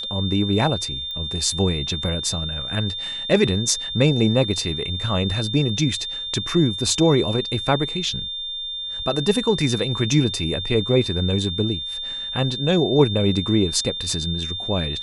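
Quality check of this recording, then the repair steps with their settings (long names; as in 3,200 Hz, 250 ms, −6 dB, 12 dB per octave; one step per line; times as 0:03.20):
whistle 3,600 Hz −27 dBFS
0:01.11: click −21 dBFS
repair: click removal
notch filter 3,600 Hz, Q 30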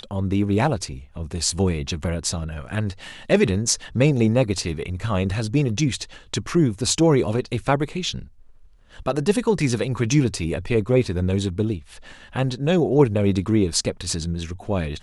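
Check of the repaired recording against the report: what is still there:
none of them is left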